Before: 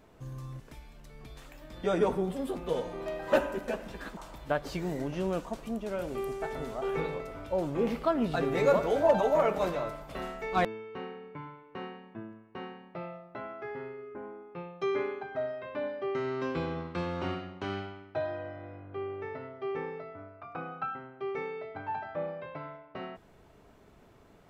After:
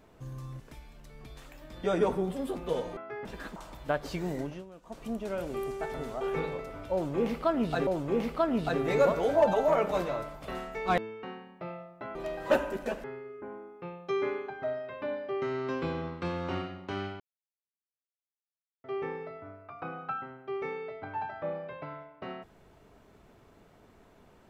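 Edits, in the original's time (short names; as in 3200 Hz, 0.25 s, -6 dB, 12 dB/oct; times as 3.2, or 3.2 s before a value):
2.97–3.86 swap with 13.49–13.77
5.01–5.68 dip -18.5 dB, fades 0.25 s
7.54–8.48 loop, 2 plays
10.9–12.57 cut
17.93–19.57 mute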